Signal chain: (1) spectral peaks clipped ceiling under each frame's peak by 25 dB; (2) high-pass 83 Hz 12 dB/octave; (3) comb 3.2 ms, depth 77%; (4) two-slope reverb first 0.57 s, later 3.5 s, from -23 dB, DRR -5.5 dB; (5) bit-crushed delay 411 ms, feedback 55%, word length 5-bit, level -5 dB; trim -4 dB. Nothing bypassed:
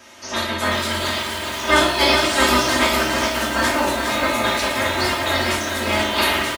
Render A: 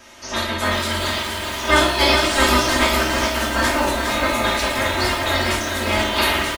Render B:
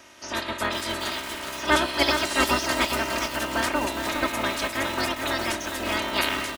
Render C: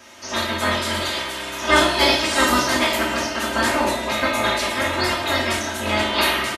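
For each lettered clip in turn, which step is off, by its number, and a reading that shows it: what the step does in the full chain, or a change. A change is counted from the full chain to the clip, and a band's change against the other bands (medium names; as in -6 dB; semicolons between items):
2, 125 Hz band +3.5 dB; 4, 125 Hz band -2.0 dB; 5, loudness change -1.0 LU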